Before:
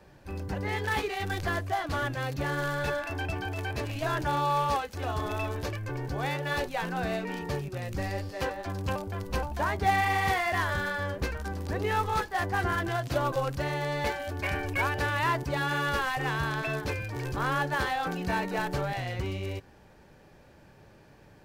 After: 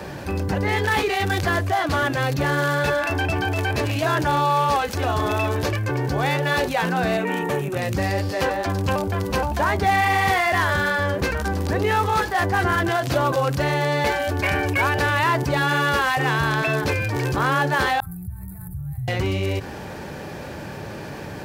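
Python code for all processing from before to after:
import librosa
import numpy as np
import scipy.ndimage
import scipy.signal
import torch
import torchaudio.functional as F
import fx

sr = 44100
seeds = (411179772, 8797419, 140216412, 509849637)

y = fx.chain(x, sr, fx.bessel_highpass(hz=200.0, order=2),
    fx.peak_eq(hz=4800.0, db=-13.0, octaves=0.56), at=(7.17, 7.76))
y = fx.chain(y, sr, fx.high_shelf(hz=3700.0, db=-9.0),
    fx.over_compress(threshold_db=-32.0, ratio=-0.5),
    fx.cheby2_bandstop(low_hz=220.0, high_hz=6400.0, order=4, stop_db=40), at=(18.0, 19.08))
y = scipy.signal.sosfilt(scipy.signal.butter(2, 69.0, 'highpass', fs=sr, output='sos'), y)
y = fx.hum_notches(y, sr, base_hz=60, count=2)
y = fx.env_flatten(y, sr, amount_pct=50)
y = y * 10.0 ** (4.5 / 20.0)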